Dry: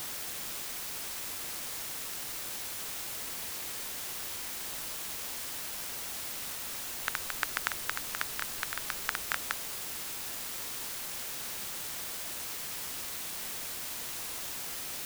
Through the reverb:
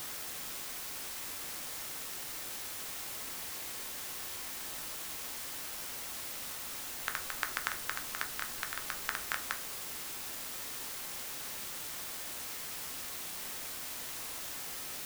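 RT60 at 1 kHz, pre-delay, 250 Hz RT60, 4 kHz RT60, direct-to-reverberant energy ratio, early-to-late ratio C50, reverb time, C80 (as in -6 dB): 0.50 s, 3 ms, 0.35 s, 0.50 s, 6.0 dB, 15.0 dB, 0.45 s, 19.5 dB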